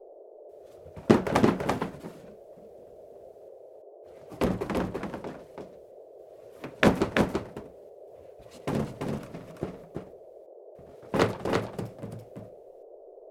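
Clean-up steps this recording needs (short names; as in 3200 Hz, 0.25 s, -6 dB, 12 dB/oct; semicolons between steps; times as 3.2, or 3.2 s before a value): noise print and reduce 25 dB; inverse comb 0.335 s -3.5 dB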